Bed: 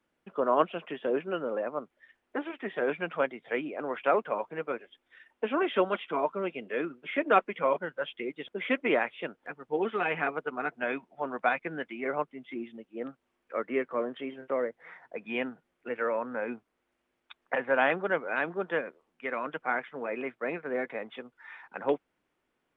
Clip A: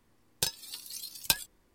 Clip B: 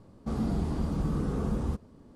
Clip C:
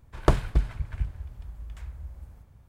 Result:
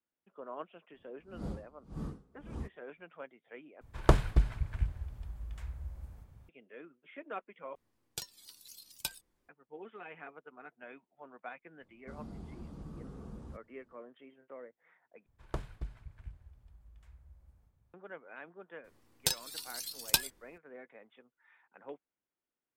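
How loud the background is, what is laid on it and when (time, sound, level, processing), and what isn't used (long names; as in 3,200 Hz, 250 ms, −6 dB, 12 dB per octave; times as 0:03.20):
bed −18.5 dB
0:00.92: mix in B −8.5 dB, fades 0.10 s + tremolo with a sine in dB 1.8 Hz, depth 30 dB
0:03.81: overwrite with C −2.5 dB
0:07.75: overwrite with A −11.5 dB + pitch modulation by a square or saw wave saw down 4.3 Hz, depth 160 cents
0:11.81: mix in B −17 dB
0:15.26: overwrite with C −17.5 dB
0:18.84: mix in A −0.5 dB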